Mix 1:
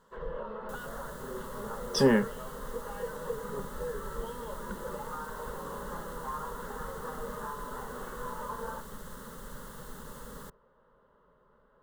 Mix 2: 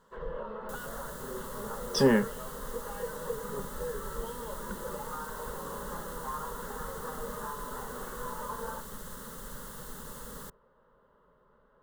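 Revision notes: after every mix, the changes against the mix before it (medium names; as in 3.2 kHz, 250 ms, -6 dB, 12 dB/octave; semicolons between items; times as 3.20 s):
second sound: add treble shelf 3.8 kHz +6 dB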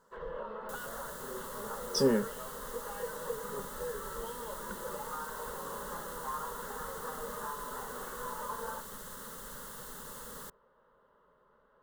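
speech: add high-order bell 1.6 kHz -11 dB 2.6 oct; master: add bass shelf 270 Hz -8.5 dB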